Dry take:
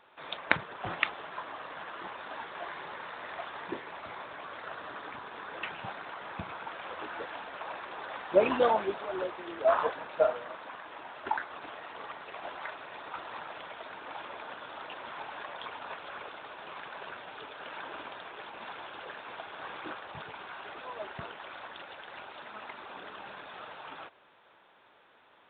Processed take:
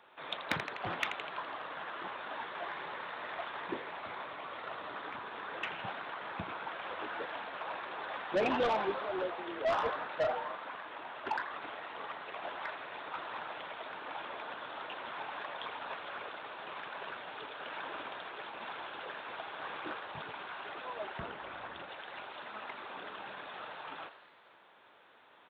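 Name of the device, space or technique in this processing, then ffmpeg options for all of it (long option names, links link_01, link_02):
one-band saturation: -filter_complex "[0:a]asettb=1/sr,asplit=3[link_01][link_02][link_03];[link_01]atrim=end=4.304[link_04];[link_02]atrim=start=4.3:end=4.97,asetpts=PTS-STARTPTS,afade=type=in:duration=0.004:curve=qsin,afade=type=out:start_time=0.666:duration=0.004:curve=qsin,bandreject=frequency=1600:width=8.2[link_05];[link_03]atrim=start=4.966[link_06];[link_04][link_05]acrossfade=duration=0.004:curve1=hsin:curve2=qsin[link_07];[link_07][link_06]acrossfade=duration=0.004:curve1=qsin:curve2=hsin,asettb=1/sr,asplit=3[link_08][link_09][link_10];[link_08]atrim=end=21.204[link_11];[link_09]atrim=start=21.2:end=21.89,asetpts=PTS-STARTPTS,afade=type=in:duration=0.004:curve=qsin,afade=type=out:start_time=0.686:duration=0.004:curve=qsin,aemphasis=mode=reproduction:type=bsi[link_12];[link_10]atrim=start=21.886[link_13];[link_11][link_12]acrossfade=duration=0.004:curve1=hsin:curve2=qsin[link_14];[link_14][link_13]acrossfade=duration=0.004:curve1=qsin:curve2=hsin,lowshelf=frequency=64:gain=-10,asplit=8[link_15][link_16][link_17][link_18][link_19][link_20][link_21][link_22];[link_16]adelay=83,afreqshift=140,volume=-13dB[link_23];[link_17]adelay=166,afreqshift=280,volume=-17.4dB[link_24];[link_18]adelay=249,afreqshift=420,volume=-21.9dB[link_25];[link_19]adelay=332,afreqshift=560,volume=-26.3dB[link_26];[link_20]adelay=415,afreqshift=700,volume=-30.7dB[link_27];[link_21]adelay=498,afreqshift=840,volume=-35.2dB[link_28];[link_22]adelay=581,afreqshift=980,volume=-39.6dB[link_29];[link_15][link_23][link_24][link_25][link_26][link_27][link_28][link_29]amix=inputs=8:normalize=0,acrossover=split=240|3000[link_30][link_31][link_32];[link_31]asoftclip=type=tanh:threshold=-27dB[link_33];[link_30][link_33][link_32]amix=inputs=3:normalize=0"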